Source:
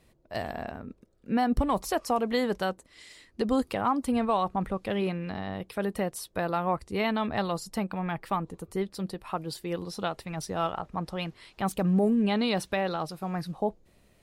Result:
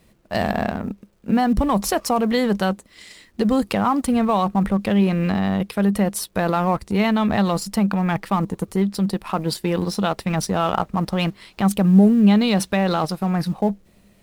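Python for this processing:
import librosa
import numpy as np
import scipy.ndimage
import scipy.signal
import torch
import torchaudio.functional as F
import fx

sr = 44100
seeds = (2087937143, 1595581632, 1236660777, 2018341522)

p1 = fx.law_mismatch(x, sr, coded='A')
p2 = fx.peak_eq(p1, sr, hz=200.0, db=11.0, octaves=0.24)
p3 = fx.over_compress(p2, sr, threshold_db=-34.0, ratio=-1.0)
p4 = p2 + (p3 * 10.0 ** (-1.5 / 20.0))
y = p4 * 10.0 ** (5.0 / 20.0)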